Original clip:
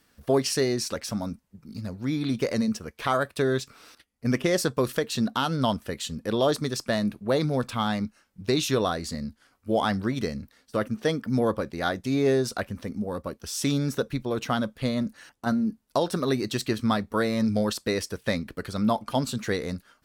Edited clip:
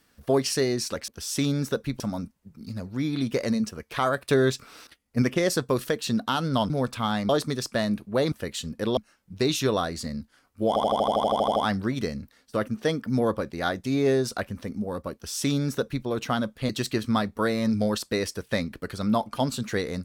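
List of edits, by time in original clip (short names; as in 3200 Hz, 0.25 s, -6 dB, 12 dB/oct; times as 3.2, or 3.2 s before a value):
3.29–4.3 gain +3.5 dB
5.78–6.43 swap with 7.46–8.05
9.76 stutter 0.08 s, 12 plays
13.34–14.26 copy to 1.08
14.89–16.44 cut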